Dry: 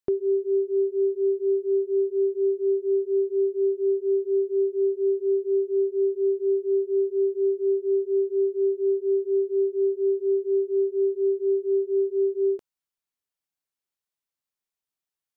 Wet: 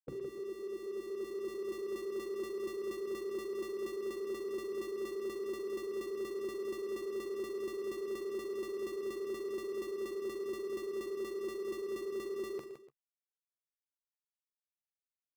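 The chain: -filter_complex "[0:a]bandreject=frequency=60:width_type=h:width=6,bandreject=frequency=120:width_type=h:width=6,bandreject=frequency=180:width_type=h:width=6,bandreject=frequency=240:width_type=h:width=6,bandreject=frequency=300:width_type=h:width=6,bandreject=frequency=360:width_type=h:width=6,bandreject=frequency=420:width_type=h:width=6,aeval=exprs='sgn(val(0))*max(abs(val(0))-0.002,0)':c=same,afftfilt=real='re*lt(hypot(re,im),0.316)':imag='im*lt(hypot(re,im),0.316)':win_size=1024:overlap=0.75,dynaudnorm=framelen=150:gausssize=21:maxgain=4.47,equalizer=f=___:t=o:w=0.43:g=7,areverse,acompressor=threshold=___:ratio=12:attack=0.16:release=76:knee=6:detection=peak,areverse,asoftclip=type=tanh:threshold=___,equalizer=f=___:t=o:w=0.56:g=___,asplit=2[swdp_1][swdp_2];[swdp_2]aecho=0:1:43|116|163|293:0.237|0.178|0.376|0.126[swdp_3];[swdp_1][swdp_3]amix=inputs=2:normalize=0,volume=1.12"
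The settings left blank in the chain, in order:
140, 0.0158, 0.0178, 500, 3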